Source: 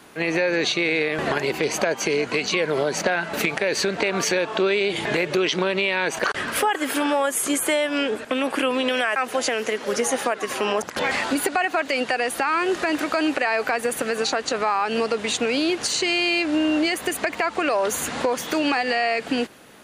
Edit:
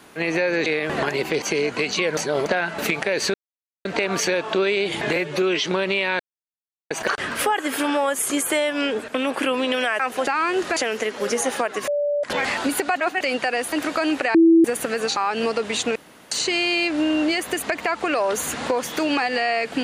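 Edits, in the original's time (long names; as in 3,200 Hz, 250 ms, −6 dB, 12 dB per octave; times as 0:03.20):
0:00.66–0:00.95: remove
0:01.71–0:01.97: remove
0:02.72–0:03.01: reverse
0:03.89: splice in silence 0.51 s
0:05.20–0:05.53: time-stretch 1.5×
0:06.07: splice in silence 0.71 s
0:10.54–0:10.90: beep over 582 Hz −19 dBFS
0:11.62–0:11.87: reverse
0:12.39–0:12.89: move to 0:09.43
0:13.51–0:13.81: beep over 330 Hz −9.5 dBFS
0:14.33–0:14.71: remove
0:15.50–0:15.86: fill with room tone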